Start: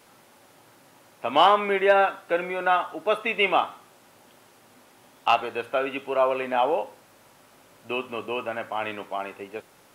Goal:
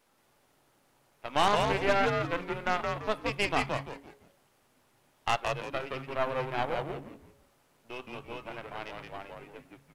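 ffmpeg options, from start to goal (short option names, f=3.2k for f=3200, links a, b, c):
-filter_complex "[0:a]aeval=exprs='if(lt(val(0),0),0.447*val(0),val(0))':c=same,aeval=exprs='0.447*(cos(1*acos(clip(val(0)/0.447,-1,1)))-cos(1*PI/2))+0.0316*(cos(5*acos(clip(val(0)/0.447,-1,1)))-cos(5*PI/2))+0.0562*(cos(7*acos(clip(val(0)/0.447,-1,1)))-cos(7*PI/2))':c=same,asplit=5[a][b][c][d][e];[b]adelay=170,afreqshift=-140,volume=-3.5dB[f];[c]adelay=340,afreqshift=-280,volume=-13.1dB[g];[d]adelay=510,afreqshift=-420,volume=-22.8dB[h];[e]adelay=680,afreqshift=-560,volume=-32.4dB[i];[a][f][g][h][i]amix=inputs=5:normalize=0,volume=-5.5dB"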